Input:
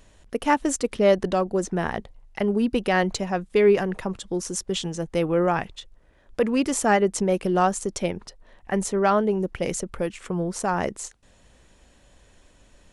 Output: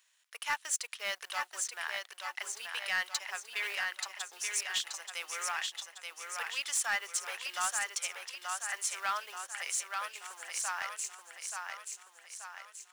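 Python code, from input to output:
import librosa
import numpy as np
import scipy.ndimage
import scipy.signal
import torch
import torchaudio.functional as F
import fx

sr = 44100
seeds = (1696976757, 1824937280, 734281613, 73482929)

y = fx.law_mismatch(x, sr, coded='A')
y = scipy.signal.sosfilt(scipy.signal.bessel(4, 1800.0, 'highpass', norm='mag', fs=sr, output='sos'), y)
y = fx.echo_feedback(y, sr, ms=880, feedback_pct=50, wet_db=-5)
y = 10.0 ** (-22.5 / 20.0) * np.tanh(y / 10.0 ** (-22.5 / 20.0))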